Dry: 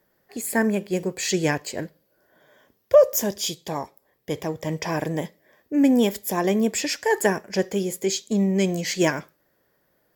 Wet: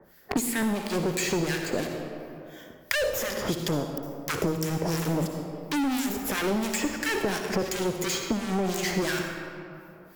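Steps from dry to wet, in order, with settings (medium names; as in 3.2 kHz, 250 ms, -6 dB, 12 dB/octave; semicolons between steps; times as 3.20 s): 3.68–6.23 s: high-order bell 1.7 kHz -12.5 dB 2.8 oct; waveshaping leveller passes 5; saturation -16.5 dBFS, distortion -11 dB; harmonic tremolo 2.9 Hz, depth 100%, crossover 1.4 kHz; reverberation RT60 1.1 s, pre-delay 53 ms, DRR 5.5 dB; three bands compressed up and down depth 100%; trim -5.5 dB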